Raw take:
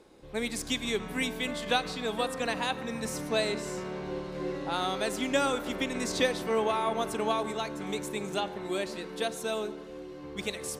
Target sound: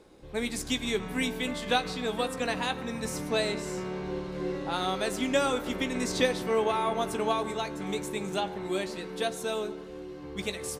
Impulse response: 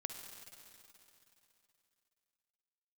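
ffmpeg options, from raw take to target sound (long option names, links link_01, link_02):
-filter_complex "[0:a]lowshelf=frequency=140:gain=5,asplit=2[link_01][link_02];[link_02]adelay=16,volume=-10.5dB[link_03];[link_01][link_03]amix=inputs=2:normalize=0"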